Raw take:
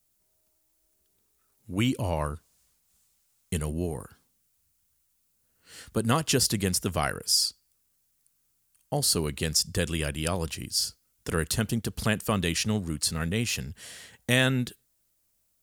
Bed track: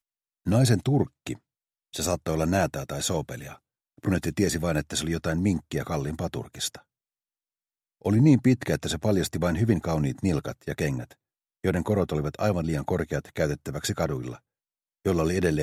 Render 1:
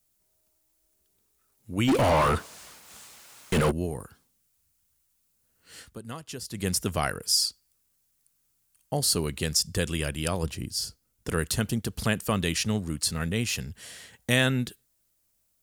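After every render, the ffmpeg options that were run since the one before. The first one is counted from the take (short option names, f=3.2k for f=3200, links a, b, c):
-filter_complex "[0:a]asplit=3[a][b][c];[a]afade=t=out:st=1.87:d=0.02[d];[b]asplit=2[e][f];[f]highpass=f=720:p=1,volume=39dB,asoftclip=type=tanh:threshold=-13.5dB[g];[e][g]amix=inputs=2:normalize=0,lowpass=f=1.6k:p=1,volume=-6dB,afade=t=in:st=1.87:d=0.02,afade=t=out:st=3.7:d=0.02[h];[c]afade=t=in:st=3.7:d=0.02[i];[d][h][i]amix=inputs=3:normalize=0,asettb=1/sr,asplit=3[j][k][l];[j]atrim=end=10.434[m];[k]atrim=start=10.43:end=11.29,asetpts=PTS-STARTPTS,afade=t=in:d=0.004:c=qsin,afade=t=out:st=0.856:d=0.004:c=qsin,tiltshelf=f=860:g=4[n];[l]atrim=start=11.286[o];[m][n]acrossfade=d=0.004:c1=hsin:c2=qsin[p];[p][o]acrossfade=d=0.004:c1=qsin:c2=hsin,asplit=3[q][r][s];[q]atrim=end=5.98,asetpts=PTS-STARTPTS,afade=t=out:st=5.78:d=0.2:silence=0.188365[t];[r]atrim=start=5.98:end=6.5,asetpts=PTS-STARTPTS,volume=-14.5dB[u];[s]atrim=start=6.5,asetpts=PTS-STARTPTS,afade=t=in:d=0.2:silence=0.188365[v];[t][u][v]concat=n=3:v=0:a=1"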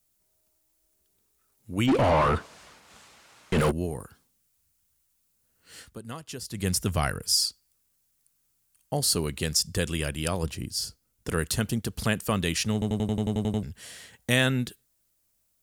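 -filter_complex "[0:a]asettb=1/sr,asplit=3[a][b][c];[a]atrim=end=1.864[d];[b]atrim=start=1.86:end=3.58,asetpts=PTS-STARTPTS,afade=t=in:d=0.004:c=qsin,afade=t=out:st=1.716:d=0.004:c=qsin,aemphasis=mode=reproduction:type=50fm[e];[c]atrim=start=3.576[f];[d][e]acrossfade=d=0.004:c1=hsin:c2=qsin[g];[g][f]acrossfade=d=0.004:c1=qsin:c2=hsin,asettb=1/sr,asplit=3[h][i][j];[h]atrim=end=6.344[k];[i]atrim=start=6.34:end=7.38,asetpts=PTS-STARTPTS,afade=t=in:d=0.004:c=qsin,afade=t=out:st=1.036:d=0.004:c=qsin,asubboost=boost=5.5:cutoff=220[l];[j]atrim=start=7.376[m];[k][l]acrossfade=d=0.004:c1=hsin:c2=qsin[n];[n][m]acrossfade=d=0.004:c1=qsin:c2=hsin,asplit=11[o][p][q][r][s][t][u][v][w][x][y];[o]atrim=end=12.822[z];[p]atrim=start=12.728:end=12.822[aa];[q]atrim=start=12.728:end=12.822[ab];[r]atrim=start=12.728:end=12.822[ac];[s]atrim=start=12.728:end=12.822[ad];[t]atrim=start=12.728:end=12.822[ae];[u]atrim=start=12.728:end=12.822[af];[v]atrim=start=12.728:end=12.822[ag];[w]atrim=start=12.728:end=12.822[ah];[x]atrim=start=12.728:end=12.822[ai];[y]atrim=start=13.628[aj];[z][aa]acrossfade=d=0.004:c1=hsin:c2=hsin[ak];[ak][ab]acrossfade=d=0.004:c1=hsin:c2=hsin[al];[al][ac]acrossfade=d=0.004:c1=hsin:c2=hsin[am];[am][ad]acrossfade=d=0.004:c1=hsin:c2=hsin[an];[an][ae]acrossfade=d=0.004:c1=hsin:c2=hsin[ao];[ao][af]acrossfade=d=0.004:c1=hsin:c2=hsin[ap];[ap][ag]acrossfade=d=0.004:c1=hsin:c2=hsin[aq];[aq][ah]acrossfade=d=0.004:c1=hsin:c2=hsin[ar];[ar][ai]acrossfade=d=0.004:c1=hsin:c2=hsin[as];[as][aj]acrossfade=d=0.004:c1=hsin:c2=hsin"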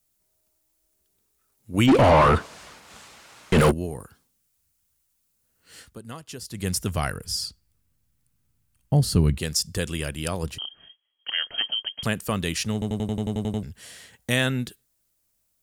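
-filter_complex "[0:a]asettb=1/sr,asplit=3[a][b][c];[a]atrim=end=1.744[d];[b]atrim=start=1.74:end=3.74,asetpts=PTS-STARTPTS,afade=t=in:d=0.004:c=qsin,afade=t=out:st=1.996:d=0.004:c=qsin,acontrast=52[e];[c]atrim=start=3.736[f];[d][e]acrossfade=d=0.004:c1=hsin:c2=qsin[g];[g][f]acrossfade=d=0.004:c1=qsin:c2=hsin,asettb=1/sr,asplit=3[h][i][j];[h]atrim=end=7.244[k];[i]atrim=start=7.24:end=9.38,asetpts=PTS-STARTPTS,afade=t=in:d=0.004:c=qsin,afade=t=out:st=2.136:d=0.004:c=qsin,bass=f=250:g=15,treble=f=4k:g=-7[l];[j]atrim=start=9.376[m];[k][l]acrossfade=d=0.004:c1=hsin:c2=qsin[n];[n][m]acrossfade=d=0.004:c1=qsin:c2=hsin,asettb=1/sr,asplit=3[o][p][q];[o]atrim=end=10.584[r];[p]atrim=start=10.58:end=12.03,asetpts=PTS-STARTPTS,afade=t=in:d=0.004:c=qsin,afade=t=out:st=1.446:d=0.004:c=qsin,lowpass=f=2.8k:t=q:w=0.5098,lowpass=f=2.8k:t=q:w=0.6013,lowpass=f=2.8k:t=q:w=0.9,lowpass=f=2.8k:t=q:w=2.563,afreqshift=-3300[s];[q]atrim=start=12.026[t];[r][s]acrossfade=d=0.004:c1=hsin:c2=qsin[u];[u][t]acrossfade=d=0.004:c1=qsin:c2=hsin"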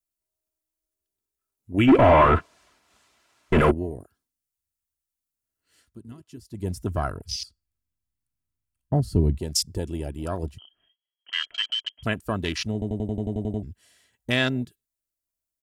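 -af "afwtdn=0.0282,aecho=1:1:3:0.41"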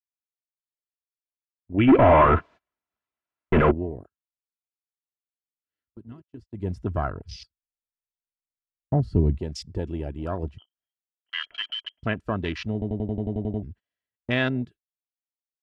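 -af "lowpass=2.6k,agate=range=-27dB:threshold=-44dB:ratio=16:detection=peak"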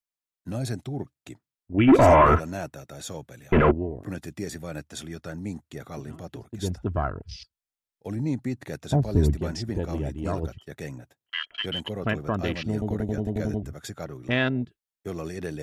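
-filter_complex "[1:a]volume=-9.5dB[a];[0:a][a]amix=inputs=2:normalize=0"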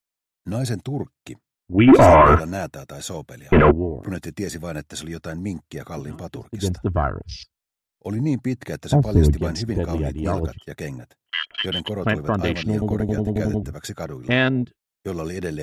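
-af "volume=5.5dB,alimiter=limit=-3dB:level=0:latency=1"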